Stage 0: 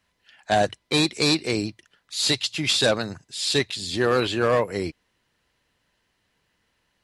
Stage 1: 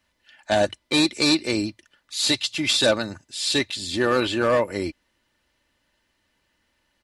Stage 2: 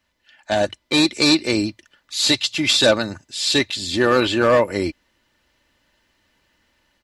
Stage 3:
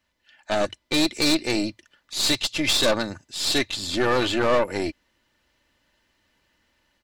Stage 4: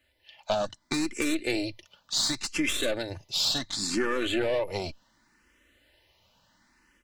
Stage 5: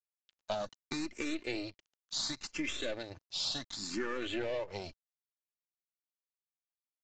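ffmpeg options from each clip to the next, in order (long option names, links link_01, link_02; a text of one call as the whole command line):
ffmpeg -i in.wav -af "aecho=1:1:3.4:0.46" out.wav
ffmpeg -i in.wav -af "equalizer=frequency=9400:width=7.6:gain=-13,dynaudnorm=framelen=580:gausssize=3:maxgain=6dB" out.wav
ffmpeg -i in.wav -af "aeval=exprs='(tanh(5.62*val(0)+0.65)-tanh(0.65))/5.62':channel_layout=same" out.wav
ffmpeg -i in.wav -filter_complex "[0:a]acompressor=threshold=-28dB:ratio=6,asplit=2[link_01][link_02];[link_02]afreqshift=0.69[link_03];[link_01][link_03]amix=inputs=2:normalize=1,volume=6dB" out.wav
ffmpeg -i in.wav -af "aeval=exprs='sgn(val(0))*max(abs(val(0))-0.00562,0)':channel_layout=same,aresample=16000,aresample=44100,volume=-8dB" out.wav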